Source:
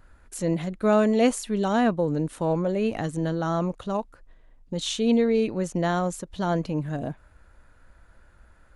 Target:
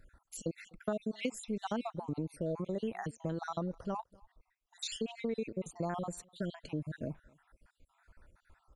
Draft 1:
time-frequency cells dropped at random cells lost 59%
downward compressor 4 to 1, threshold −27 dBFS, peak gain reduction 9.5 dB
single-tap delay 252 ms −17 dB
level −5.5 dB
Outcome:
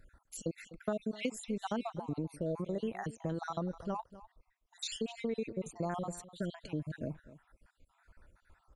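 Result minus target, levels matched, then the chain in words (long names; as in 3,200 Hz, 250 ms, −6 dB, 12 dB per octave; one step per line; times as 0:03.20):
echo-to-direct +10.5 dB
time-frequency cells dropped at random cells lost 59%
downward compressor 4 to 1, threshold −27 dBFS, peak gain reduction 9.5 dB
single-tap delay 252 ms −27.5 dB
level −5.5 dB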